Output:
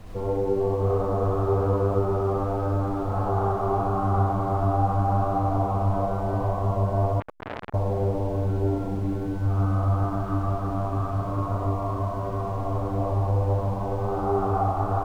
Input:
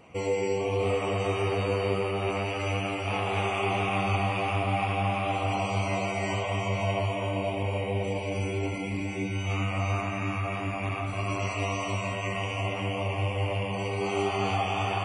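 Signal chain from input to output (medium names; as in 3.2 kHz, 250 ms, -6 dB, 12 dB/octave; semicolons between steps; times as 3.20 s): steep low-pass 1.5 kHz 72 dB/octave; bass shelf 160 Hz +4 dB; added noise brown -39 dBFS; loudspeakers at several distances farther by 22 m -1 dB, 35 m -1 dB; 7.20–7.74 s: transformer saturation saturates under 1.9 kHz; trim -1 dB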